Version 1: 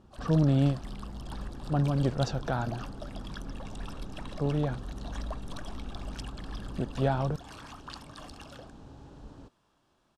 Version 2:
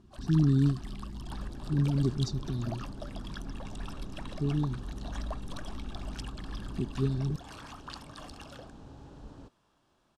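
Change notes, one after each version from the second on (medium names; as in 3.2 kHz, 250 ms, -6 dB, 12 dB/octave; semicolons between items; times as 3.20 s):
speech: add brick-wall FIR band-stop 430–3500 Hz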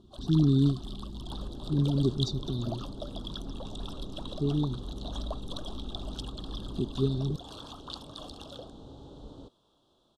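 master: add FFT filter 180 Hz 0 dB, 490 Hz +6 dB, 830 Hz 0 dB, 1.3 kHz -2 dB, 2.1 kHz -24 dB, 3.5 kHz +12 dB, 5.1 kHz -1 dB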